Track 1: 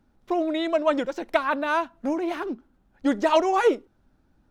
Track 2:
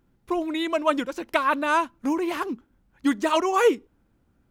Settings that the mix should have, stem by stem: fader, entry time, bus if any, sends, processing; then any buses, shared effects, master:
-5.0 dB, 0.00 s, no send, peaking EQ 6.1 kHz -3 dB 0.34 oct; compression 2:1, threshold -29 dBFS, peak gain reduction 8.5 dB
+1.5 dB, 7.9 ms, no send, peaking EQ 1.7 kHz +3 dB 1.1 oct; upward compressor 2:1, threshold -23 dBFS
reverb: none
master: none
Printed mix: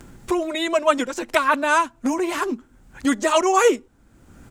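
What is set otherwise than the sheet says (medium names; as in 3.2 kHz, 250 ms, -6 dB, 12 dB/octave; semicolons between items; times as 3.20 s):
stem 1 -5.0 dB -> +1.5 dB; master: extra peaking EQ 7.5 kHz +11.5 dB 0.78 oct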